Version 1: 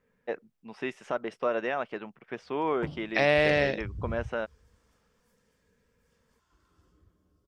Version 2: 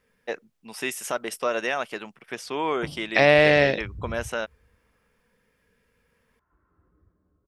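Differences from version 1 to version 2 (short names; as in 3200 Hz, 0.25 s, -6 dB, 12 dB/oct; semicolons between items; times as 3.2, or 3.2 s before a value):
first voice: remove tape spacing loss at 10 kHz 34 dB; second voice +6.5 dB; background: add inverse Chebyshev low-pass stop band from 3800 Hz, stop band 40 dB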